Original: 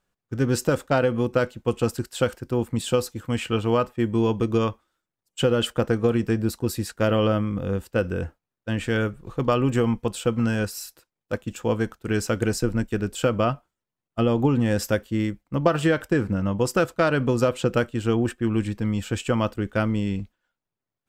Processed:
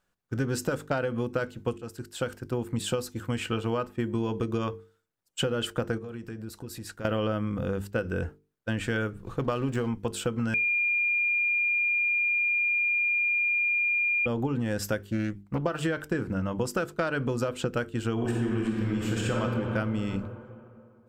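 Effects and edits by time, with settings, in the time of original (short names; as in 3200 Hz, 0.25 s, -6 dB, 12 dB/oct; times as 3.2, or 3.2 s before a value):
1.78–3.04 fade in equal-power, from -21 dB
5.98–7.05 compressor 4:1, threshold -37 dBFS
9.41–9.88 backlash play -36 dBFS
10.54–14.26 bleep 2410 Hz -15.5 dBFS
15.11–15.65 Doppler distortion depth 0.3 ms
18.13–19.4 reverb throw, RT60 2.4 s, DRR -4 dB
whole clip: bell 1500 Hz +4 dB 0.29 oct; notches 50/100/150/200/250/300/350/400/450 Hz; compressor, threshold -25 dBFS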